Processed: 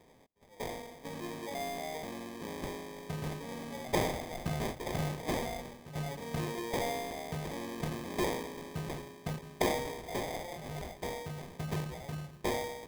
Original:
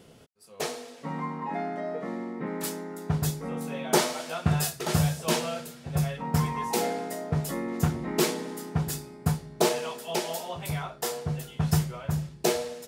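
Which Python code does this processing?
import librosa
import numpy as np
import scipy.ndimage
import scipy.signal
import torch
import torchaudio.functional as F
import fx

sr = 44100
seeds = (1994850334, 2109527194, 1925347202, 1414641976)

y = fx.low_shelf(x, sr, hz=180.0, db=-10.5)
y = fx.sample_hold(y, sr, seeds[0], rate_hz=1400.0, jitter_pct=0)
y = fx.transient(y, sr, attack_db=-1, sustain_db=6)
y = y * librosa.db_to_amplitude(-6.0)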